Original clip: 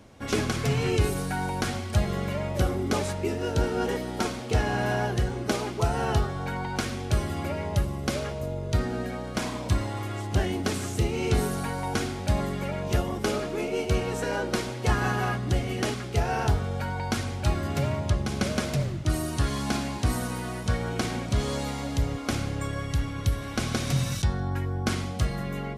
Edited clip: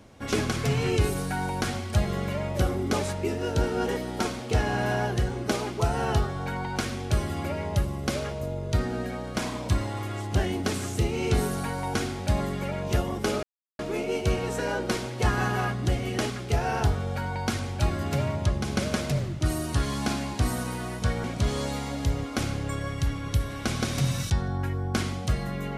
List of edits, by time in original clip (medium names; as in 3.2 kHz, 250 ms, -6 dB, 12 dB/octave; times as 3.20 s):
13.43 s: insert silence 0.36 s
20.88–21.16 s: delete